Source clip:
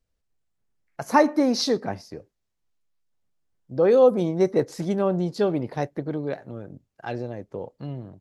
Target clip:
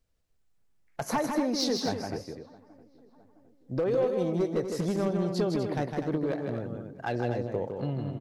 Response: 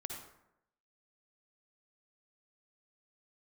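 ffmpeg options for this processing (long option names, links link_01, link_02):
-filter_complex "[0:a]acompressor=threshold=-27dB:ratio=10,asplit=2[link_01][link_02];[link_02]adelay=663,lowpass=frequency=1700:poles=1,volume=-24dB,asplit=2[link_03][link_04];[link_04]adelay=663,lowpass=frequency=1700:poles=1,volume=0.53,asplit=2[link_05][link_06];[link_06]adelay=663,lowpass=frequency=1700:poles=1,volume=0.53[link_07];[link_03][link_05][link_07]amix=inputs=3:normalize=0[link_08];[link_01][link_08]amix=inputs=2:normalize=0,volume=24dB,asoftclip=hard,volume=-24dB,asplit=2[link_09][link_10];[link_10]aecho=0:1:157.4|247.8:0.562|0.355[link_11];[link_09][link_11]amix=inputs=2:normalize=0,volume=2dB"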